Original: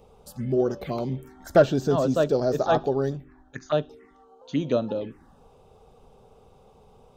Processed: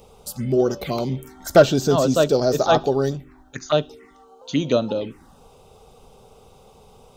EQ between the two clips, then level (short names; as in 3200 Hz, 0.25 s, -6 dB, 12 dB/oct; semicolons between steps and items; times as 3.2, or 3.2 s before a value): high shelf 2600 Hz +10.5 dB; notch 1700 Hz, Q 11; +4.0 dB